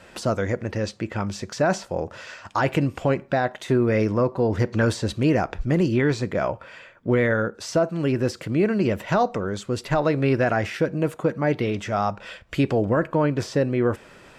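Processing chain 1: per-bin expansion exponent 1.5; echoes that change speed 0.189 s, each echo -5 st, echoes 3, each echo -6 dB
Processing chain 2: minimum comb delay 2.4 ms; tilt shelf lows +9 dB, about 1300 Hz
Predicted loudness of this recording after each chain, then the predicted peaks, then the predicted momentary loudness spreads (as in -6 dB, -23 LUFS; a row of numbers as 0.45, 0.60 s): -26.0, -19.0 LUFS; -10.5, -3.0 dBFS; 9, 10 LU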